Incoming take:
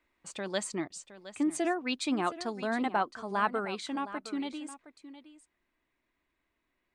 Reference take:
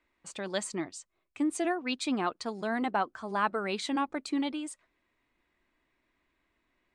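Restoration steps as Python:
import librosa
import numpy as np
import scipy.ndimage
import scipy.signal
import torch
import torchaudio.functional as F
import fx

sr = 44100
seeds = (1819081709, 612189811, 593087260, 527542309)

y = fx.fix_interpolate(x, sr, at_s=(0.88,), length_ms=21.0)
y = fx.fix_echo_inverse(y, sr, delay_ms=715, level_db=-14.5)
y = fx.gain(y, sr, db=fx.steps((0.0, 0.0), (3.65, 4.5)))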